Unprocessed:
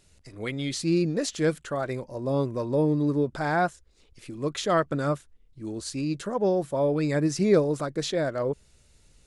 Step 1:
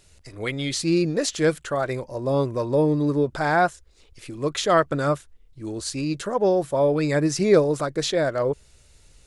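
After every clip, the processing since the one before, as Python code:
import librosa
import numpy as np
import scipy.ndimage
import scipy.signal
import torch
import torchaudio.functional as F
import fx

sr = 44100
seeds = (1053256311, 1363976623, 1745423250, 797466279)

y = fx.peak_eq(x, sr, hz=210.0, db=-5.5, octaves=1.2)
y = y * 10.0 ** (5.5 / 20.0)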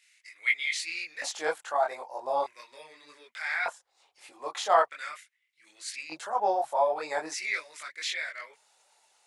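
y = fx.filter_lfo_highpass(x, sr, shape='square', hz=0.41, low_hz=810.0, high_hz=2100.0, q=5.5)
y = fx.chorus_voices(y, sr, voices=6, hz=1.4, base_ms=22, depth_ms=3.0, mix_pct=50)
y = y * 10.0 ** (-4.5 / 20.0)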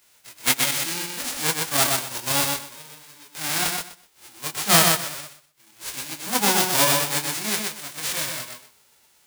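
y = fx.envelope_flatten(x, sr, power=0.1)
y = fx.echo_feedback(y, sr, ms=125, feedback_pct=19, wet_db=-3.5)
y = y * 10.0 ** (5.5 / 20.0)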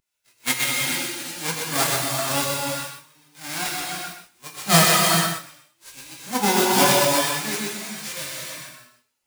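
y = fx.rev_gated(x, sr, seeds[0], gate_ms=480, shape='flat', drr_db=-2.0)
y = fx.spectral_expand(y, sr, expansion=1.5)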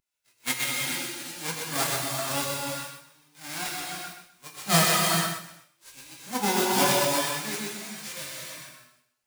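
y = x + 10.0 ** (-21.0 / 20.0) * np.pad(x, (int(255 * sr / 1000.0), 0))[:len(x)]
y = y * 10.0 ** (-5.5 / 20.0)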